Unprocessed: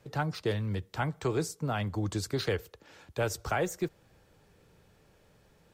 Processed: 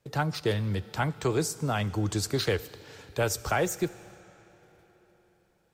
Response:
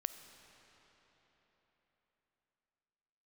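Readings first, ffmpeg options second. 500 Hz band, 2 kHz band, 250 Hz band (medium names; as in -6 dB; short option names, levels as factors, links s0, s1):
+3.0 dB, +3.5 dB, +3.0 dB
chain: -filter_complex "[0:a]agate=range=0.2:threshold=0.00112:ratio=16:detection=peak,asplit=2[s0][s1];[1:a]atrim=start_sample=2205,highshelf=f=3100:g=11.5[s2];[s1][s2]afir=irnorm=-1:irlink=0,volume=0.501[s3];[s0][s3]amix=inputs=2:normalize=0"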